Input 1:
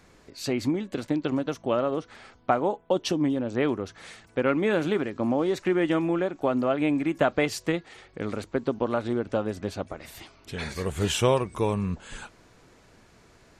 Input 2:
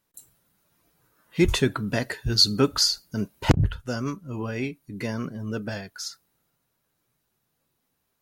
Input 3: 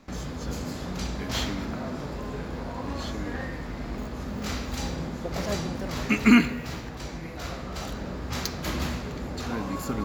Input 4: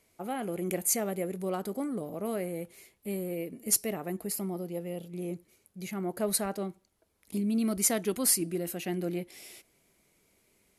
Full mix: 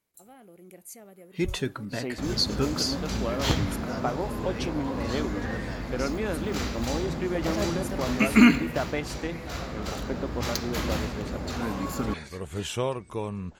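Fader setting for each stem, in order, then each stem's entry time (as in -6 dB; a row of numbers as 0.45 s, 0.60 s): -6.5 dB, -7.5 dB, +0.5 dB, -17.0 dB; 1.55 s, 0.00 s, 2.10 s, 0.00 s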